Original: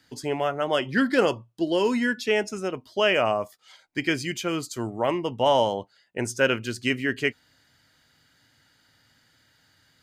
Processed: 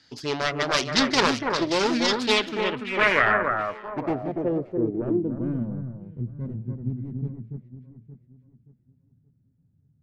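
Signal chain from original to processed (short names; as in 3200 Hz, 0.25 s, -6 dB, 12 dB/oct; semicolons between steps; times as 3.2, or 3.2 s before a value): self-modulated delay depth 0.77 ms; echo with dull and thin repeats by turns 0.288 s, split 1900 Hz, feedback 57%, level -4 dB; low-pass sweep 5200 Hz -> 160 Hz, 2.06–5.9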